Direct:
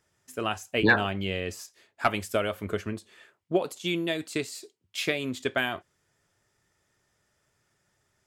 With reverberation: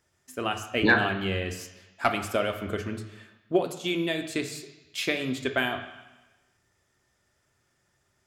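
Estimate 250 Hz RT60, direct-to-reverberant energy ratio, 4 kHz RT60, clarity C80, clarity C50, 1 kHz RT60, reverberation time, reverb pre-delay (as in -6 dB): 1.1 s, 6.0 dB, 1.1 s, 11.5 dB, 9.5 dB, 1.1 s, 1.1 s, 3 ms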